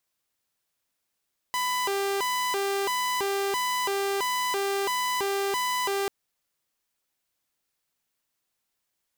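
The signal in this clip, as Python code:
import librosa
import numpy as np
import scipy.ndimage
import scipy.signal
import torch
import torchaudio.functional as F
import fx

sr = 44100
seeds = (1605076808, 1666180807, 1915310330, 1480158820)

y = fx.siren(sr, length_s=4.54, kind='hi-lo', low_hz=396.0, high_hz=998.0, per_s=1.5, wave='saw', level_db=-22.5)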